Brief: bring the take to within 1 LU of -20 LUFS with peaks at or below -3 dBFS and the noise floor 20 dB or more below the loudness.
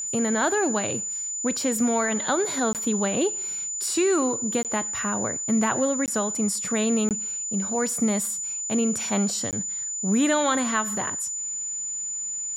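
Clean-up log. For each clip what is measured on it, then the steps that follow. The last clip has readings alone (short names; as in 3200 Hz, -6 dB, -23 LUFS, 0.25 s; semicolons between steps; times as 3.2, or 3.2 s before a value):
dropouts 5; longest dropout 18 ms; steady tone 7000 Hz; tone level -28 dBFS; loudness -24.5 LUFS; peak -10.5 dBFS; loudness target -20.0 LUFS
-> interpolate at 2.73/4.63/6.06/7.09/9.51, 18 ms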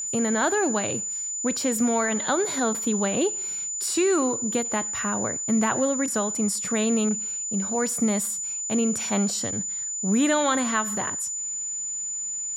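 dropouts 0; steady tone 7000 Hz; tone level -28 dBFS
-> notch 7000 Hz, Q 30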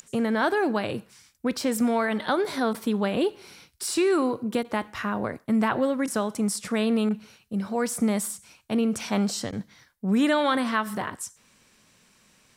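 steady tone none; loudness -26.0 LUFS; peak -11.5 dBFS; loudness target -20.0 LUFS
-> gain +6 dB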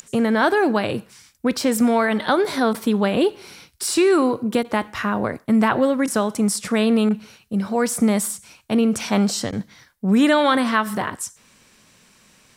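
loudness -20.0 LUFS; peak -5.5 dBFS; noise floor -56 dBFS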